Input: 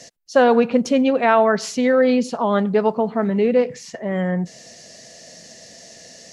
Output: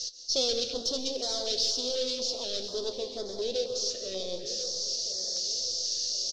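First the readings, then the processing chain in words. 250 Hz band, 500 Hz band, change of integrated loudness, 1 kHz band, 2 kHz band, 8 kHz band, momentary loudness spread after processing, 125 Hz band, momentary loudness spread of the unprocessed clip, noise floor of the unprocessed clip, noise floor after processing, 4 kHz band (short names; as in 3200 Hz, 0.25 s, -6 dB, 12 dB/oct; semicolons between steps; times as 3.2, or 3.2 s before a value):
-24.0 dB, -15.0 dB, -11.5 dB, -26.0 dB, -24.5 dB, +5.5 dB, 7 LU, under -25 dB, 10 LU, -44 dBFS, -40 dBFS, +8.5 dB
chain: tracing distortion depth 0.17 ms; hard clip -19 dBFS, distortion -6 dB; flange 0.71 Hz, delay 9.8 ms, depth 9.2 ms, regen +66%; bell 5000 Hz +8.5 dB 0.64 oct; on a send: feedback echo 1.04 s, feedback 34%, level -15 dB; on the sum: plate-style reverb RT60 1.8 s, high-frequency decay 0.85×, pre-delay 0.115 s, DRR 8 dB; vocal rider within 4 dB 2 s; EQ curve 110 Hz 0 dB, 170 Hz -28 dB, 320 Hz -3 dB, 520 Hz -2 dB, 830 Hz -14 dB, 2100 Hz -16 dB, 3600 Hz +11 dB, 6200 Hz +9 dB, 12000 Hz -23 dB; stepped notch 4.1 Hz 860–2700 Hz; gain -1.5 dB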